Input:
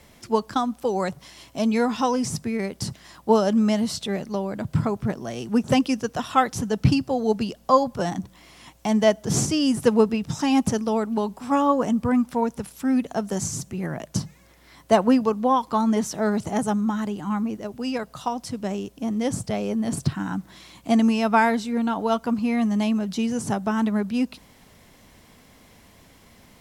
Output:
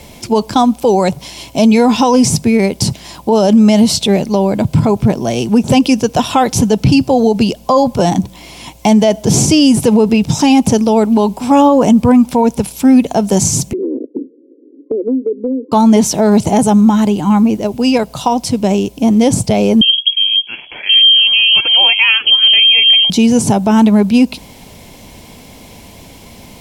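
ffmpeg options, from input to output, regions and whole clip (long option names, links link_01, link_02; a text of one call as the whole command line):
ffmpeg -i in.wav -filter_complex "[0:a]asettb=1/sr,asplit=3[link_01][link_02][link_03];[link_01]atrim=end=13.734[link_04];[link_02]atrim=start=13.73:end=15.72,asetpts=PTS-STARTPTS,afade=type=in:duration=0.004:curve=qsin,afade=type=out:start_time=1.986:duration=0.004:curve=qsin,asuperpass=centerf=360:order=12:qfactor=1.5,aemphasis=mode=reproduction:type=riaa,acompressor=threshold=-30dB:ratio=5:attack=3.2:release=140:knee=1:detection=peak[link_05];[link_03]atrim=start=15.716[link_06];[link_04][link_05]acrossfade=duration=0.004:curve1=hsin:curve2=qsin[link_07];[link_07][link_06]acrossfade=duration=0.004:curve1=qsin:curve2=hsin,asettb=1/sr,asplit=3[link_08][link_09][link_10];[link_08]atrim=end=19.814[link_11];[link_09]atrim=start=19.81:end=23.1,asetpts=PTS-STARTPTS,afade=type=in:duration=0.004:curve=qsin,afade=type=out:start_time=3.286:duration=0.004:curve=qsin,acrossover=split=680[link_12][link_13];[link_13]adelay=660[link_14];[link_12][link_14]amix=inputs=2:normalize=0,atrim=end_sample=145089,lowpass=frequency=2900:width_type=q:width=0.5098,lowpass=frequency=2900:width_type=q:width=0.6013,lowpass=frequency=2900:width_type=q:width=0.9,lowpass=frequency=2900:width_type=q:width=2.563,afreqshift=-3400[link_15];[link_10]atrim=start=23.096[link_16];[link_11][link_15]acrossfade=duration=0.004:curve1=hsin:curve2=qsin[link_17];[link_17][link_16]acrossfade=duration=0.004:curve1=qsin:curve2=hsin,superequalizer=10b=0.398:11b=0.398,alimiter=level_in=17dB:limit=-1dB:release=50:level=0:latency=1,volume=-1dB" out.wav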